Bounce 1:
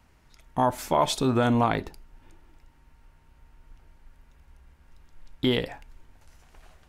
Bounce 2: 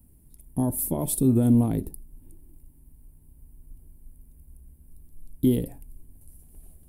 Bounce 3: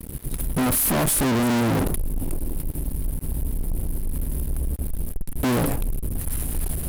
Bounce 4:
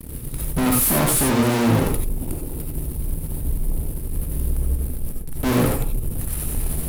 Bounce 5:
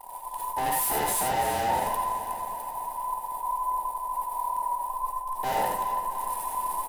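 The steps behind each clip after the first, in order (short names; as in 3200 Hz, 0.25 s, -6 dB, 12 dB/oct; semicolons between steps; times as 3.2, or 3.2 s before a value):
EQ curve 280 Hz 0 dB, 1300 Hz -28 dB, 6500 Hz -17 dB, 9800 Hz +11 dB; gain +5 dB
in parallel at 0 dB: level quantiser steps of 18 dB; on the sum: fuzz box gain 45 dB, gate -54 dBFS; gain -6.5 dB
non-linear reverb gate 0.11 s rising, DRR 1 dB; attack slew limiter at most 160 dB/s
band inversion scrambler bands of 1000 Hz; feedback echo 0.328 s, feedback 56%, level -12 dB; gain -8.5 dB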